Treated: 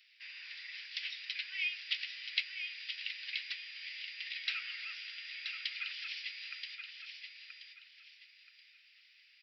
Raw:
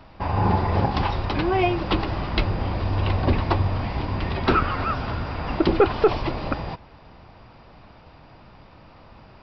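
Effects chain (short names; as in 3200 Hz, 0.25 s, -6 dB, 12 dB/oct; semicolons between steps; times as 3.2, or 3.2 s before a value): steep high-pass 2000 Hz 48 dB/oct; feedback echo 0.978 s, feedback 29%, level -6.5 dB; gain -4 dB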